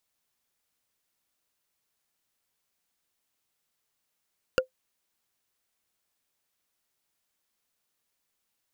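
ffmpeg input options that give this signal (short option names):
-f lavfi -i "aevalsrc='0.188*pow(10,-3*t/0.11)*sin(2*PI*516*t)+0.141*pow(10,-3*t/0.033)*sin(2*PI*1422.6*t)+0.106*pow(10,-3*t/0.015)*sin(2*PI*2788.5*t)+0.0794*pow(10,-3*t/0.008)*sin(2*PI*4609.4*t)+0.0596*pow(10,-3*t/0.005)*sin(2*PI*6883.4*t)':d=0.45:s=44100"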